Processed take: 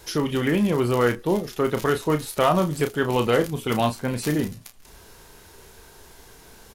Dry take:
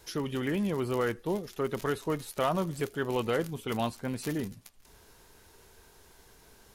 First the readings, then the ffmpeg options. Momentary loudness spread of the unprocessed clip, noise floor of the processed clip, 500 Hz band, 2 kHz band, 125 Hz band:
5 LU, -49 dBFS, +9.0 dB, +9.0 dB, +9.5 dB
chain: -filter_complex "[0:a]asplit=2[a][b];[b]adelay=33,volume=-8dB[c];[a][c]amix=inputs=2:normalize=0,volume=8.5dB"

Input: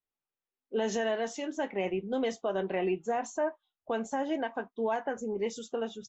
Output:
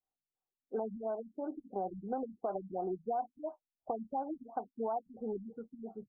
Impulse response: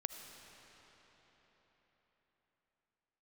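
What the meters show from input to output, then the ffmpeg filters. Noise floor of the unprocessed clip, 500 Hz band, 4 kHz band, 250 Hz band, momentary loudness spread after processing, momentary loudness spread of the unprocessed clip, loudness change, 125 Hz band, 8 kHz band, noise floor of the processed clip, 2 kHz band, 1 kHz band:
under -85 dBFS, -7.5 dB, under -40 dB, -7.0 dB, 7 LU, 5 LU, -7.0 dB, -6.5 dB, n/a, under -85 dBFS, under -20 dB, -3.0 dB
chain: -af "equalizer=f=760:t=o:w=0.27:g=13.5,acompressor=threshold=-30dB:ratio=5,afftfilt=real='re*lt(b*sr/1024,240*pow(1600/240,0.5+0.5*sin(2*PI*2.9*pts/sr)))':imag='im*lt(b*sr/1024,240*pow(1600/240,0.5+0.5*sin(2*PI*2.9*pts/sr)))':win_size=1024:overlap=0.75,volume=-2.5dB"

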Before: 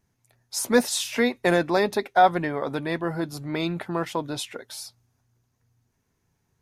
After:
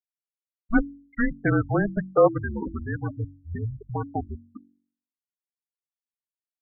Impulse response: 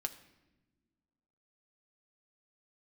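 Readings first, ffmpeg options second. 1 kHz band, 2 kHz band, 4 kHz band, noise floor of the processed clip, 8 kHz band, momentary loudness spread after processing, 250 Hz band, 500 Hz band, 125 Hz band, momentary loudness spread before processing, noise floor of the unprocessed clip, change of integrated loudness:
-8.0 dB, -3.5 dB, under -40 dB, under -85 dBFS, under -40 dB, 14 LU, 0.0 dB, -1.5 dB, +5.0 dB, 14 LU, -73 dBFS, -1.5 dB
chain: -af "highpass=f=240:t=q:w=0.5412,highpass=f=240:t=q:w=1.307,lowpass=f=2.6k:t=q:w=0.5176,lowpass=f=2.6k:t=q:w=0.7071,lowpass=f=2.6k:t=q:w=1.932,afreqshift=-220,afftfilt=real='re*gte(hypot(re,im),0.126)':imag='im*gte(hypot(re,im),0.126)':win_size=1024:overlap=0.75,bandreject=f=46.96:t=h:w=4,bandreject=f=93.92:t=h:w=4,bandreject=f=140.88:t=h:w=4,bandreject=f=187.84:t=h:w=4,bandreject=f=234.8:t=h:w=4,bandreject=f=281.76:t=h:w=4,bandreject=f=328.72:t=h:w=4"

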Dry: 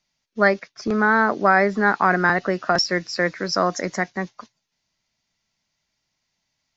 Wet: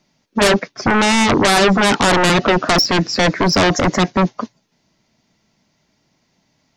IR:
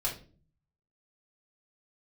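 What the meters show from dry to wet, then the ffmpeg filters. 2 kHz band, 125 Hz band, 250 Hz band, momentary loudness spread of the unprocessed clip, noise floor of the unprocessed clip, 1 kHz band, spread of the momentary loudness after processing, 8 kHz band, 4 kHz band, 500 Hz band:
+2.5 dB, +10.5 dB, +8.5 dB, 10 LU, -77 dBFS, +4.0 dB, 6 LU, n/a, +12.0 dB, +5.5 dB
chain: -filter_complex "[0:a]equalizer=f=280:w=0.37:g=15,asplit=2[a][b];[b]aeval=exprs='1.78*sin(PI/2*8.91*val(0)/1.78)':c=same,volume=-7dB[c];[a][c]amix=inputs=2:normalize=0,volume=-9.5dB"

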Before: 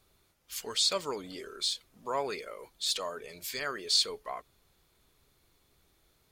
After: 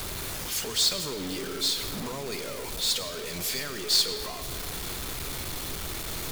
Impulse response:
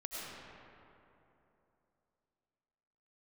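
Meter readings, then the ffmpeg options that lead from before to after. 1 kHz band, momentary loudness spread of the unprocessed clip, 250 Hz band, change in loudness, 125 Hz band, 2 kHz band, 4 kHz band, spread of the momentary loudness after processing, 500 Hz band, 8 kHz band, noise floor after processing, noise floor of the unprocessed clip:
-0.5 dB, 15 LU, +9.5 dB, +3.5 dB, +16.5 dB, +5.5 dB, +4.5 dB, 10 LU, +2.0 dB, +7.0 dB, -36 dBFS, -70 dBFS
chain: -filter_complex "[0:a]aeval=exprs='val(0)+0.5*0.0282*sgn(val(0))':c=same,acrossover=split=300|3000[a][b][c];[b]acompressor=threshold=-41dB:ratio=6[d];[a][d][c]amix=inputs=3:normalize=0,acrusher=bits=2:mode=log:mix=0:aa=0.000001,asplit=2[e][f];[1:a]atrim=start_sample=2205[g];[f][g]afir=irnorm=-1:irlink=0,volume=-6dB[h];[e][h]amix=inputs=2:normalize=0"

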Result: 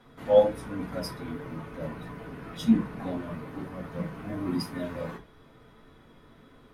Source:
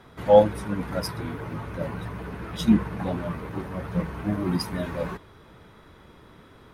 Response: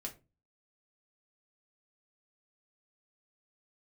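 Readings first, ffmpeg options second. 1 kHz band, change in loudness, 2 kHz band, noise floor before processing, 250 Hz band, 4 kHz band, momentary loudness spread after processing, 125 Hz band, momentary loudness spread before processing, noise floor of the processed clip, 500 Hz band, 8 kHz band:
-8.0 dB, -4.0 dB, -5.5 dB, -52 dBFS, -3.5 dB, -5.0 dB, 17 LU, -7.5 dB, 17 LU, -56 dBFS, -3.5 dB, n/a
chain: -filter_complex "[1:a]atrim=start_sample=2205,atrim=end_sample=4410[a];[0:a][a]afir=irnorm=-1:irlink=0,volume=-3dB"

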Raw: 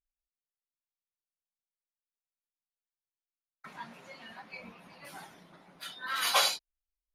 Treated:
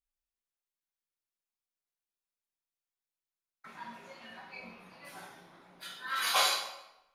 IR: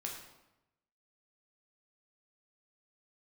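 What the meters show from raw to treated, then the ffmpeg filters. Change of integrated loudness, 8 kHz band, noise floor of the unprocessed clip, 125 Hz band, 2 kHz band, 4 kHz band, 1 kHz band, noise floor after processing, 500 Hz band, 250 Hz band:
-1.0 dB, -1.0 dB, under -85 dBFS, -2.5 dB, 0.0 dB, -1.0 dB, 0.0 dB, under -85 dBFS, -1.5 dB, -1.0 dB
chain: -filter_complex "[0:a]equalizer=f=160:t=o:w=1.1:g=-3[a];[1:a]atrim=start_sample=2205[b];[a][b]afir=irnorm=-1:irlink=0"

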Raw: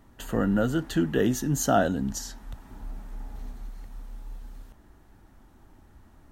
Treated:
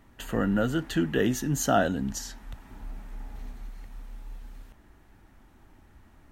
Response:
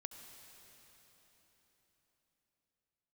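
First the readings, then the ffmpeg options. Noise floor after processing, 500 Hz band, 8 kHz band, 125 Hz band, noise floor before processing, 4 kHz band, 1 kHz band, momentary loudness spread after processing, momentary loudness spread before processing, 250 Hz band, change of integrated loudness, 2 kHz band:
-57 dBFS, -1.5 dB, -1.0 dB, -1.5 dB, -56 dBFS, +1.0 dB, -1.0 dB, 22 LU, 21 LU, -1.5 dB, -1.0 dB, +1.5 dB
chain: -af "equalizer=f=2.3k:t=o:w=1:g=6,volume=-1.5dB"

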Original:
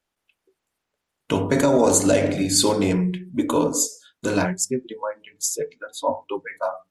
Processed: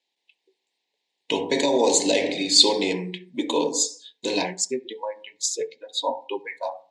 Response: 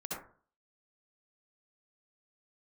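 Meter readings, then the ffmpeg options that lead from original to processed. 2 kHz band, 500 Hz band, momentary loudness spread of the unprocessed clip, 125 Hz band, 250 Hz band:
-0.5 dB, -2.5 dB, 13 LU, -14.0 dB, -6.0 dB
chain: -filter_complex "[0:a]asuperstop=centerf=1300:order=4:qfactor=1.4,highpass=460,equalizer=f=620:t=q:w=4:g=-10,equalizer=f=1.5k:t=q:w=4:g=-6,equalizer=f=3.9k:t=q:w=4:g=8,equalizer=f=6.1k:t=q:w=4:g=-4,lowpass=f=6.9k:w=0.5412,lowpass=f=6.9k:w=1.3066,asplit=2[a][b];[1:a]atrim=start_sample=2205[c];[b][c]afir=irnorm=-1:irlink=0,volume=-22.5dB[d];[a][d]amix=inputs=2:normalize=0,volume=3.5dB"

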